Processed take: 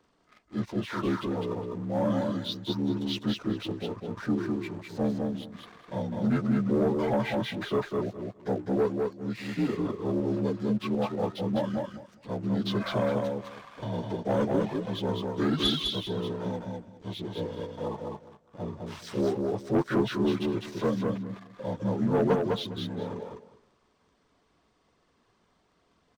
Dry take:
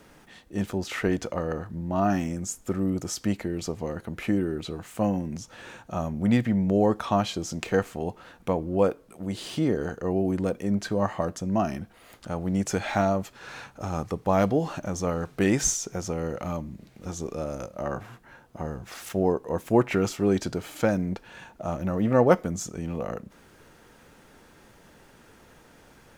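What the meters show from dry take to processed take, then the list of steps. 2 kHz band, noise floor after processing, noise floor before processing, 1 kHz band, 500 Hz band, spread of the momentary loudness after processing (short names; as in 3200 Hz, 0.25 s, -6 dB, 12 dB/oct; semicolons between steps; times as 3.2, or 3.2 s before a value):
-4.5 dB, -69 dBFS, -55 dBFS, -5.0 dB, -2.5 dB, 12 LU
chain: inharmonic rescaling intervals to 81%; reverb removal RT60 0.71 s; sample leveller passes 2; feedback echo 0.204 s, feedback 18%, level -3.5 dB; gain -8 dB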